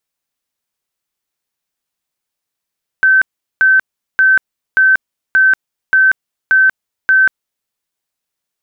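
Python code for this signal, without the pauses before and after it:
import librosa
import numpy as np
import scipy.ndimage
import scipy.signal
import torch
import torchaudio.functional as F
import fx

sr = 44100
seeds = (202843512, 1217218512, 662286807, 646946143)

y = fx.tone_burst(sr, hz=1540.0, cycles=287, every_s=0.58, bursts=8, level_db=-6.0)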